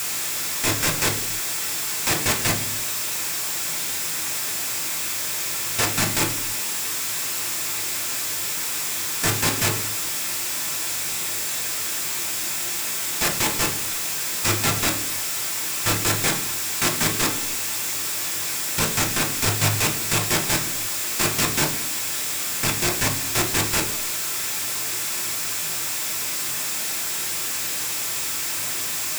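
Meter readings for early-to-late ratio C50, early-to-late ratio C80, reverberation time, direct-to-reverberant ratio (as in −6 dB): 10.5 dB, 15.5 dB, 0.50 s, 1.5 dB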